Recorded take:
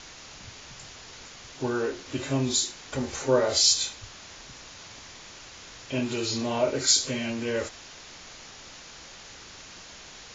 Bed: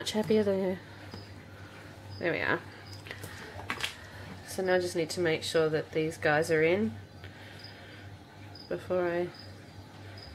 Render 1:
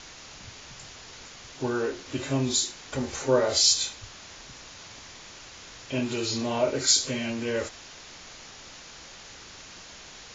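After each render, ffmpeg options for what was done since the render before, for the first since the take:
ffmpeg -i in.wav -af anull out.wav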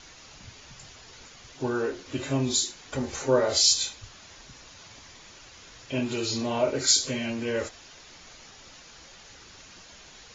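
ffmpeg -i in.wav -af "afftdn=noise_reduction=6:noise_floor=-46" out.wav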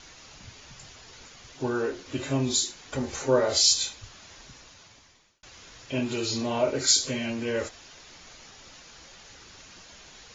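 ffmpeg -i in.wav -filter_complex "[0:a]asplit=2[link_01][link_02];[link_01]atrim=end=5.43,asetpts=PTS-STARTPTS,afade=type=out:start_time=4.47:duration=0.96[link_03];[link_02]atrim=start=5.43,asetpts=PTS-STARTPTS,afade=type=in:duration=0.004:curve=hsin[link_04];[link_03][link_04]concat=n=2:v=0:a=1" out.wav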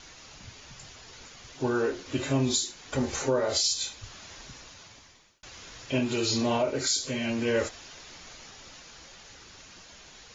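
ffmpeg -i in.wav -af "dynaudnorm=framelen=230:gausssize=17:maxgain=3dB,alimiter=limit=-16dB:level=0:latency=1:release=451" out.wav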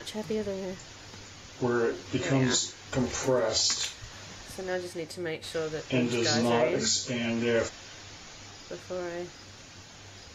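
ffmpeg -i in.wav -i bed.wav -filter_complex "[1:a]volume=-5.5dB[link_01];[0:a][link_01]amix=inputs=2:normalize=0" out.wav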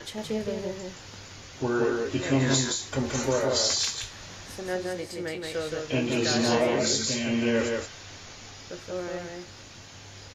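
ffmpeg -i in.wav -filter_complex "[0:a]asplit=2[link_01][link_02];[link_02]adelay=22,volume=-11.5dB[link_03];[link_01][link_03]amix=inputs=2:normalize=0,asplit=2[link_04][link_05];[link_05]aecho=0:1:172:0.668[link_06];[link_04][link_06]amix=inputs=2:normalize=0" out.wav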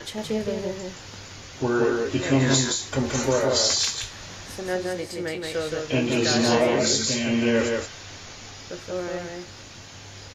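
ffmpeg -i in.wav -af "volume=3.5dB" out.wav

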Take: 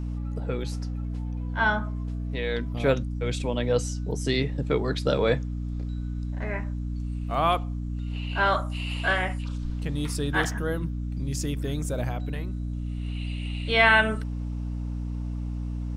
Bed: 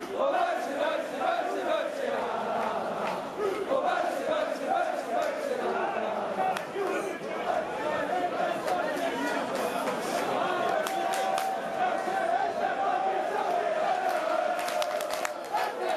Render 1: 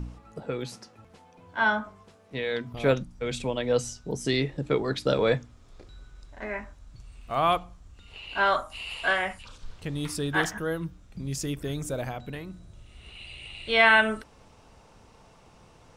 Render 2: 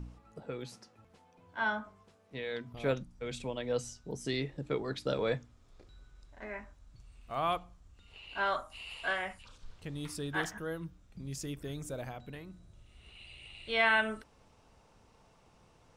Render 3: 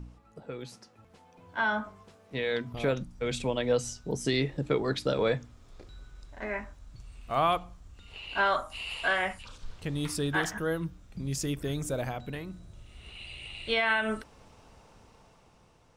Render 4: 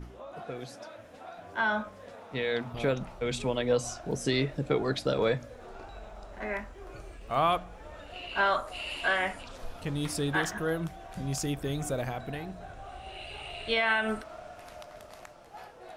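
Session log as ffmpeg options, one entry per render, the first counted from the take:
ffmpeg -i in.wav -af "bandreject=frequency=60:width_type=h:width=4,bandreject=frequency=120:width_type=h:width=4,bandreject=frequency=180:width_type=h:width=4,bandreject=frequency=240:width_type=h:width=4,bandreject=frequency=300:width_type=h:width=4" out.wav
ffmpeg -i in.wav -af "volume=-8.5dB" out.wav
ffmpeg -i in.wav -af "alimiter=level_in=0.5dB:limit=-24dB:level=0:latency=1:release=131,volume=-0.5dB,dynaudnorm=framelen=470:gausssize=5:maxgain=8dB" out.wav
ffmpeg -i in.wav -i bed.wav -filter_complex "[1:a]volume=-18dB[link_01];[0:a][link_01]amix=inputs=2:normalize=0" out.wav

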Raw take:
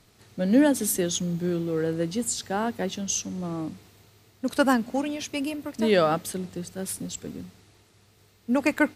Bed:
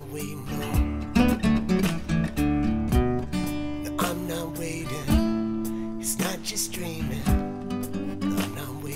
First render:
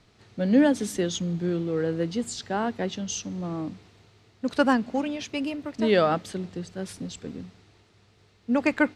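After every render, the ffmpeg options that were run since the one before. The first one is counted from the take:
ffmpeg -i in.wav -af "lowpass=5100" out.wav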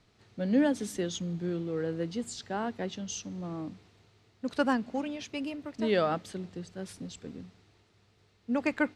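ffmpeg -i in.wav -af "volume=-6dB" out.wav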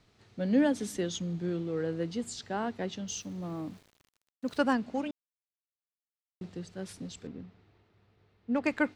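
ffmpeg -i in.wav -filter_complex "[0:a]asettb=1/sr,asplit=3[link_01][link_02][link_03];[link_01]atrim=end=3.084[link_04];[link_02]atrim=start=3.08:end=4.61,asetpts=PTS-STARTPTS,afade=type=in:duration=0.004:curve=qsin,afade=type=out:start_time=1.526:duration=0.004:curve=qsin,aeval=exprs='val(0)*gte(abs(val(0)),0.00188)':channel_layout=same[link_05];[link_03]atrim=start=4.606[link_06];[link_04][link_05]acrossfade=duration=0.004:curve1=hsin:curve2=qsin[link_07];[link_07][link_06]acrossfade=duration=0.004:curve1=qsin:curve2=hsin,asettb=1/sr,asplit=3[link_08][link_09][link_10];[link_08]atrim=end=7.274[link_11];[link_09]atrim=start=7.27:end=8.64,asetpts=PTS-STARTPTS,afade=type=in:duration=0.004:curve=qsin,afade=type=out:start_time=1.366:duration=0.004:curve=qsin,adynamicsmooth=sensitivity=6.5:basefreq=3000[link_12];[link_10]atrim=start=8.636[link_13];[link_11][link_12]acrossfade=duration=0.004:curve1=hsin:curve2=qsin[link_14];[link_14][link_13]acrossfade=duration=0.004:curve1=qsin:curve2=hsin,asplit=3[link_15][link_16][link_17];[link_15]atrim=end=5.11,asetpts=PTS-STARTPTS,afade=type=out:start_time=5.106:duration=0.004:curve=hsin[link_18];[link_16]atrim=start=5.11:end=6.41,asetpts=PTS-STARTPTS,volume=0[link_19];[link_17]atrim=start=6.41,asetpts=PTS-STARTPTS,afade=type=in:duration=0.004:curve=hsin[link_20];[link_18][link_19][link_20]concat=n=3:v=0:a=1" out.wav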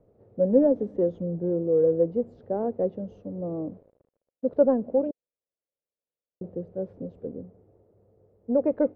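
ffmpeg -i in.wav -filter_complex "[0:a]asplit=2[link_01][link_02];[link_02]aeval=exprs='0.0376*(abs(mod(val(0)/0.0376+3,4)-2)-1)':channel_layout=same,volume=-11dB[link_03];[link_01][link_03]amix=inputs=2:normalize=0,lowpass=frequency=530:width_type=q:width=4.9" out.wav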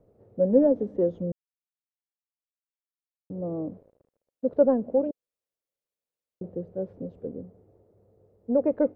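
ffmpeg -i in.wav -filter_complex "[0:a]asplit=3[link_01][link_02][link_03];[link_01]atrim=end=1.32,asetpts=PTS-STARTPTS,afade=type=out:start_time=1.316:duration=0.004:curve=hsin[link_04];[link_02]atrim=start=1.32:end=3.3,asetpts=PTS-STARTPTS,volume=0[link_05];[link_03]atrim=start=3.3,asetpts=PTS-STARTPTS,afade=type=in:duration=0.004:curve=hsin[link_06];[link_04][link_05][link_06]concat=n=3:v=0:a=1" out.wav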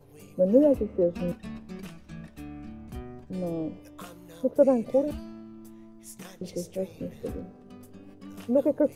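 ffmpeg -i in.wav -i bed.wav -filter_complex "[1:a]volume=-17.5dB[link_01];[0:a][link_01]amix=inputs=2:normalize=0" out.wav

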